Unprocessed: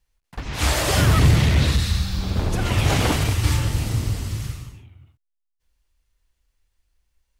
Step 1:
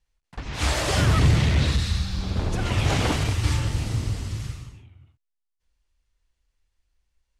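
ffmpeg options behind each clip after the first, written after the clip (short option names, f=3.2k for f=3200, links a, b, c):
-af "lowpass=8.7k,volume=-3dB"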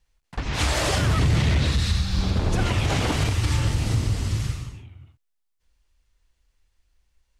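-af "alimiter=limit=-18.5dB:level=0:latency=1:release=197,volume=5.5dB"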